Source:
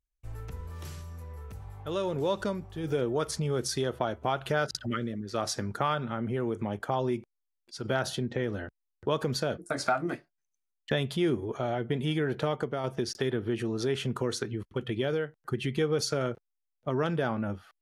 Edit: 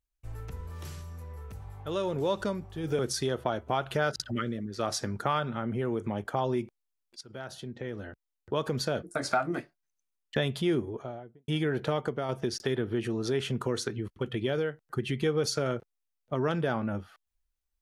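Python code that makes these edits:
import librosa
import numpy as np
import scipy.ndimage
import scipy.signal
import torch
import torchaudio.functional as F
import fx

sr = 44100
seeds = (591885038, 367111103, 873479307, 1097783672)

y = fx.studio_fade_out(x, sr, start_s=11.18, length_s=0.85)
y = fx.edit(y, sr, fx.cut(start_s=2.99, length_s=0.55),
    fx.fade_in_from(start_s=7.76, length_s=1.71, floor_db=-16.5), tone=tone)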